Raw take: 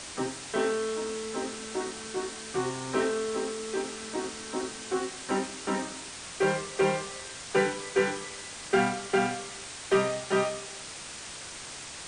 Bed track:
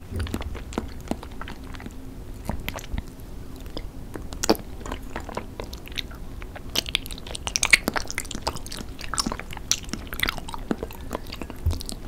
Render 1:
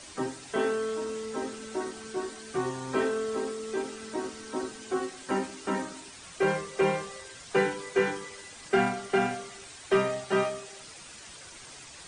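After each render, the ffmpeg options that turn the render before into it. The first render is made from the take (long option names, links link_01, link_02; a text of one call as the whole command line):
ffmpeg -i in.wav -af "afftdn=noise_reduction=9:noise_floor=-42" out.wav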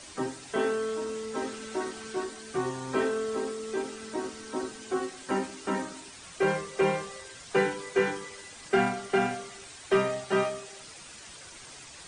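ffmpeg -i in.wav -filter_complex "[0:a]asettb=1/sr,asplit=3[link_01][link_02][link_03];[link_01]atrim=end=1.354[link_04];[link_02]atrim=start=1.35:end=2.24,asetpts=PTS-STARTPTS,afade=type=in:duration=0.004:curve=qsin,afade=type=out:start_time=0.886:duration=0.004:curve=qsin,equalizer=frequency=2200:width=0.46:gain=3[link_05];[link_03]atrim=start=2.236[link_06];[link_04][link_05]acrossfade=duration=0.004:curve1=hsin:curve2=qsin[link_07];[link_07][link_06]acrossfade=duration=0.004:curve1=qsin:curve2=hsin" out.wav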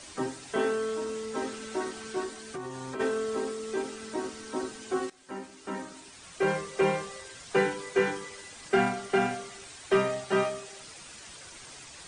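ffmpeg -i in.wav -filter_complex "[0:a]asplit=3[link_01][link_02][link_03];[link_01]afade=type=out:start_time=2.41:duration=0.02[link_04];[link_02]acompressor=threshold=-34dB:ratio=6:attack=3.2:release=140:knee=1:detection=peak,afade=type=in:start_time=2.41:duration=0.02,afade=type=out:start_time=2.99:duration=0.02[link_05];[link_03]afade=type=in:start_time=2.99:duration=0.02[link_06];[link_04][link_05][link_06]amix=inputs=3:normalize=0,asplit=2[link_07][link_08];[link_07]atrim=end=5.1,asetpts=PTS-STARTPTS,afade=type=out:start_time=5.096:duration=0.004:curve=hsin:silence=0.16788[link_09];[link_08]atrim=start=5.1,asetpts=PTS-STARTPTS,afade=type=in:duration=1.54:silence=0.16788[link_10];[link_09][link_10]concat=n=2:v=0:a=1" out.wav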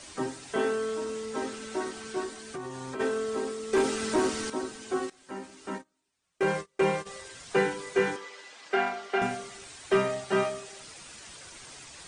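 ffmpeg -i in.wav -filter_complex "[0:a]asettb=1/sr,asplit=3[link_01][link_02][link_03];[link_01]atrim=end=3.734[link_04];[link_02]atrim=start=3.73:end=4.5,asetpts=PTS-STARTPTS,afade=type=in:duration=0.004:curve=qsin,afade=type=out:start_time=0.766:duration=0.004:curve=qsin,aeval=exprs='0.119*sin(PI/2*2*val(0)/0.119)':channel_layout=same[link_05];[link_03]atrim=start=4.496[link_06];[link_04][link_05]acrossfade=duration=0.004:curve1=hsin:curve2=qsin[link_07];[link_07][link_06]acrossfade=duration=0.004:curve1=qsin:curve2=hsin,asplit=3[link_08][link_09][link_10];[link_08]afade=type=out:start_time=5.75:duration=0.02[link_11];[link_09]agate=range=-31dB:threshold=-36dB:ratio=16:release=100:detection=peak,afade=type=in:start_time=5.75:duration=0.02,afade=type=out:start_time=7.05:duration=0.02[link_12];[link_10]afade=type=in:start_time=7.05:duration=0.02[link_13];[link_11][link_12][link_13]amix=inputs=3:normalize=0,asettb=1/sr,asplit=3[link_14][link_15][link_16];[link_14]atrim=end=8.164[link_17];[link_15]atrim=start=8.16:end=9.22,asetpts=PTS-STARTPTS,afade=type=in:duration=0.004:curve=qsin,afade=type=out:start_time=1.056:duration=0.004:curve=qsin,highpass=430,lowpass=4900[link_18];[link_16]atrim=start=9.216[link_19];[link_17][link_18]acrossfade=duration=0.004:curve1=hsin:curve2=qsin[link_20];[link_20][link_19]acrossfade=duration=0.004:curve1=qsin:curve2=hsin" out.wav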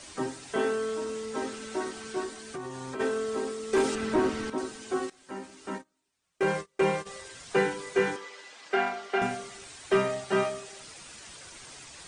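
ffmpeg -i in.wav -filter_complex "[0:a]asettb=1/sr,asplit=3[link_01][link_02][link_03];[link_01]atrim=end=3.954[link_04];[link_02]atrim=start=3.95:end=4.58,asetpts=PTS-STARTPTS,afade=type=in:duration=0.004:curve=qsin,afade=type=out:start_time=0.626:duration=0.004:curve=qsin,bass=frequency=250:gain=4,treble=frequency=4000:gain=-11[link_05];[link_03]atrim=start=4.576[link_06];[link_04][link_05]acrossfade=duration=0.004:curve1=hsin:curve2=qsin[link_07];[link_07][link_06]acrossfade=duration=0.004:curve1=qsin:curve2=hsin" out.wav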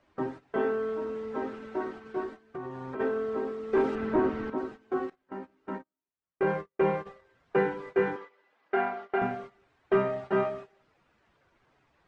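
ffmpeg -i in.wav -af "agate=range=-15dB:threshold=-40dB:ratio=16:detection=peak,lowpass=1600" out.wav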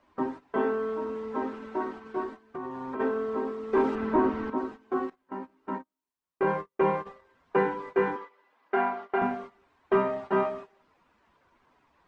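ffmpeg -i in.wav -af "equalizer=frequency=125:width_type=o:width=0.33:gain=-9,equalizer=frequency=250:width_type=o:width=0.33:gain=5,equalizer=frequency=1000:width_type=o:width=0.33:gain=9" out.wav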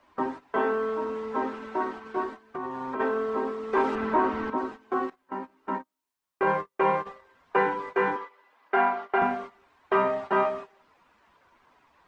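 ffmpeg -i in.wav -filter_complex "[0:a]acrossover=split=540[link_01][link_02];[link_01]alimiter=level_in=1dB:limit=-24dB:level=0:latency=1,volume=-1dB[link_03];[link_02]acontrast=28[link_04];[link_03][link_04]amix=inputs=2:normalize=0" out.wav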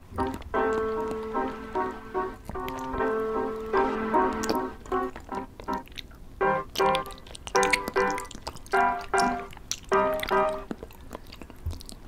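ffmpeg -i in.wav -i bed.wav -filter_complex "[1:a]volume=-9dB[link_01];[0:a][link_01]amix=inputs=2:normalize=0" out.wav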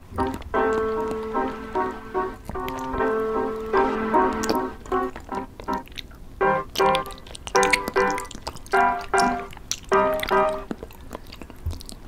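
ffmpeg -i in.wav -af "volume=4dB" out.wav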